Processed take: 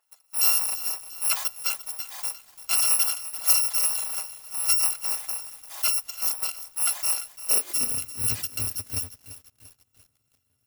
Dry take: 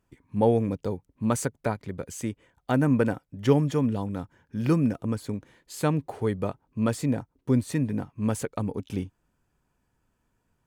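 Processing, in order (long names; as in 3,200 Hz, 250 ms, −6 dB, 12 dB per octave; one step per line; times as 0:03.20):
samples in bit-reversed order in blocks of 256 samples
high-pass filter sweep 820 Hz → 110 Hz, 0:07.35–0:08.05
feedback echo at a low word length 343 ms, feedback 55%, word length 7 bits, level −14 dB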